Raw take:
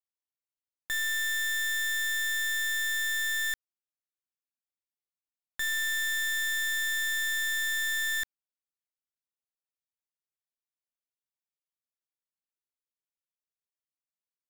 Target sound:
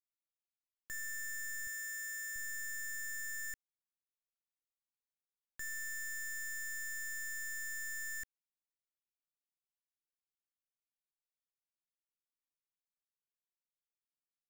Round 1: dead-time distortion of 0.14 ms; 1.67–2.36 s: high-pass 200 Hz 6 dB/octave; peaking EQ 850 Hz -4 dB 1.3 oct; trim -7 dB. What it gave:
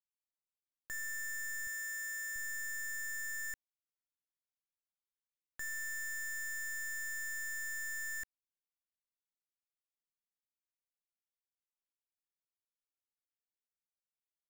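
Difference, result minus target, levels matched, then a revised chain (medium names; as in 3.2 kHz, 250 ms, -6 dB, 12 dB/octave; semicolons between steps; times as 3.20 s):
1 kHz band +2.5 dB
dead-time distortion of 0.14 ms; 1.67–2.36 s: high-pass 200 Hz 6 dB/octave; peaking EQ 850 Hz -11.5 dB 1.3 oct; trim -7 dB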